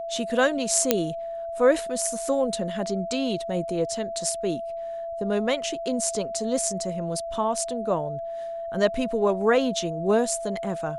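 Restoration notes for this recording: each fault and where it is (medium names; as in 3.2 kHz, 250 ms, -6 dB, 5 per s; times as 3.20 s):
whine 670 Hz -30 dBFS
0.91 s: pop -2 dBFS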